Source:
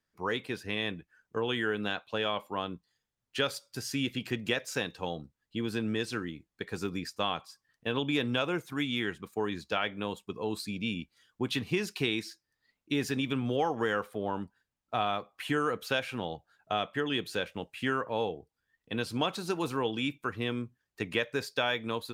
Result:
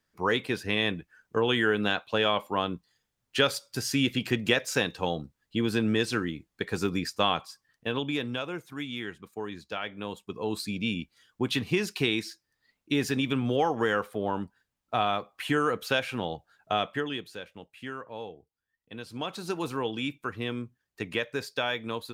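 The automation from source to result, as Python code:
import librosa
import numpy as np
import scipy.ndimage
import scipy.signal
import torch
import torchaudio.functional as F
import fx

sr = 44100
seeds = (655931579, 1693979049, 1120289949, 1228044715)

y = fx.gain(x, sr, db=fx.line((7.43, 6.0), (8.45, -4.0), (9.77, -4.0), (10.6, 3.5), (16.91, 3.5), (17.32, -8.0), (19.05, -8.0), (19.45, 0.0)))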